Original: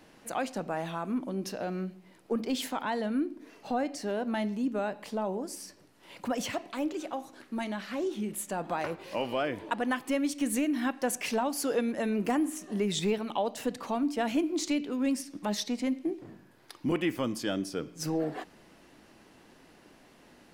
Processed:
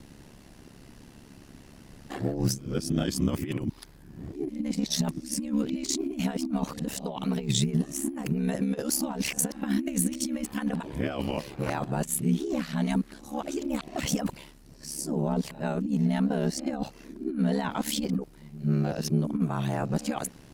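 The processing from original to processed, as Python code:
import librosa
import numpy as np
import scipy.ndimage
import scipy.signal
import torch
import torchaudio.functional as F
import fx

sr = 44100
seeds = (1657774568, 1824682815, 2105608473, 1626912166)

y = x[::-1].copy()
y = fx.over_compress(y, sr, threshold_db=-31.0, ratio=-0.5)
y = y * np.sin(2.0 * np.pi * 35.0 * np.arange(len(y)) / sr)
y = fx.bass_treble(y, sr, bass_db=14, treble_db=7)
y = y * 10.0 ** (1.5 / 20.0)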